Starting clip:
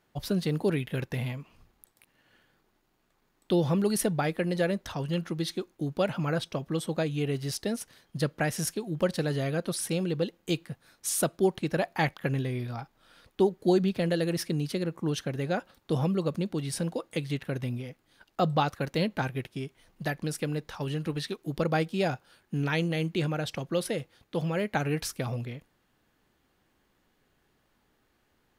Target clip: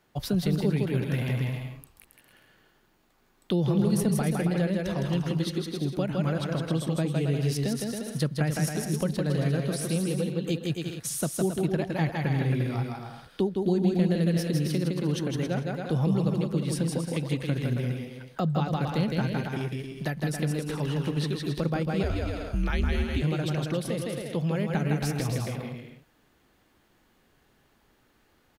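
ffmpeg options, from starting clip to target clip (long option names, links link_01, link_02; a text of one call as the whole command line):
ffmpeg -i in.wav -filter_complex "[0:a]aecho=1:1:160|272|350.4|405.3|443.7:0.631|0.398|0.251|0.158|0.1,acrossover=split=250[link_01][link_02];[link_02]acompressor=threshold=-36dB:ratio=3[link_03];[link_01][link_03]amix=inputs=2:normalize=0,asettb=1/sr,asplit=3[link_04][link_05][link_06];[link_04]atrim=end=22.034[link_07];[link_05]atrim=start=22.03:end=23.22,asetpts=PTS-STARTPTS,afade=type=in:duration=0.004:curve=qsin,afade=type=out:start_time=1.186:duration=0.004:curve=qsin,afreqshift=-97[link_08];[link_06]atrim=start=23.216[link_09];[link_07][link_08]acrossfade=duration=0.004:curve1=hsin:curve2=qsin[link_10];[link_10][link_09]acrossfade=duration=0.004:curve1=qsin:curve2=hsin,volume=3.5dB" out.wav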